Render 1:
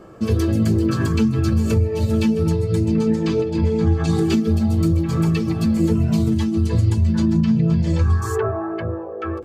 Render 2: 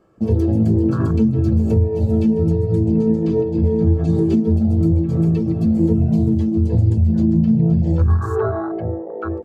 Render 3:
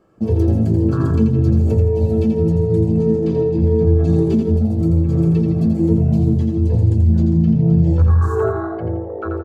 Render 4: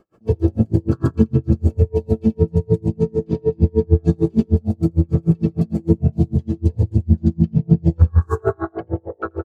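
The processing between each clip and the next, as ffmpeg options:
-af "afwtdn=0.0501,volume=2dB"
-af "aecho=1:1:84|168|252|336|420:0.531|0.207|0.0807|0.0315|0.0123"
-af "aeval=exprs='val(0)*pow(10,-38*(0.5-0.5*cos(2*PI*6.6*n/s))/20)':c=same,volume=4dB"

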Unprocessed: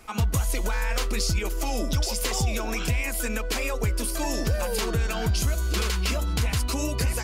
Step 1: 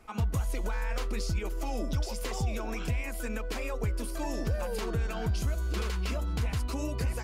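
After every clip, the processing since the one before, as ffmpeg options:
-af "highshelf=f=2.4k:g=-9,volume=-5dB"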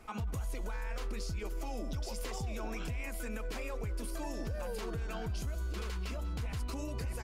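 -filter_complex "[0:a]alimiter=level_in=8dB:limit=-24dB:level=0:latency=1:release=134,volume=-8dB,asplit=4[a][b][c][d];[b]adelay=191,afreqshift=-52,volume=-18.5dB[e];[c]adelay=382,afreqshift=-104,volume=-29dB[f];[d]adelay=573,afreqshift=-156,volume=-39.4dB[g];[a][e][f][g]amix=inputs=4:normalize=0,volume=1.5dB"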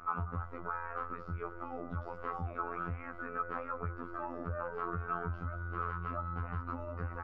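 -af "lowpass=f=1.3k:t=q:w=11,afftfilt=real='hypot(re,im)*cos(PI*b)':imag='0':win_size=2048:overlap=0.75,aemphasis=mode=reproduction:type=50kf,volume=2dB"

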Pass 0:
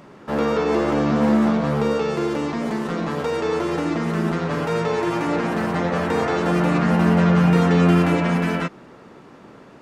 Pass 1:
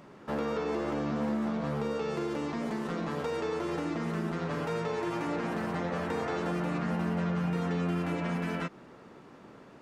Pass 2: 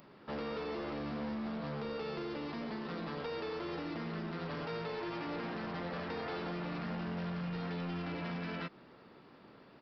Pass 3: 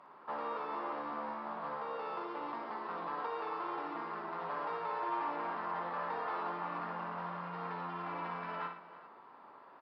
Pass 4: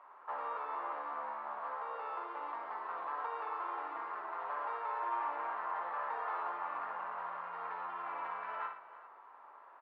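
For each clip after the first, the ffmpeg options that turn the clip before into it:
-af "acompressor=threshold=-23dB:ratio=3,volume=-7dB"
-af "aresample=11025,asoftclip=type=hard:threshold=-29dB,aresample=44100,crystalizer=i=2.5:c=0,volume=-6.5dB"
-filter_complex "[0:a]bandpass=f=1k:t=q:w=2.9:csg=0,asplit=2[a][b];[b]aecho=0:1:58|116|315|396:0.501|0.251|0.141|0.119[c];[a][c]amix=inputs=2:normalize=0,volume=9.5dB"
-af "highpass=700,lowpass=2.1k,volume=1.5dB"

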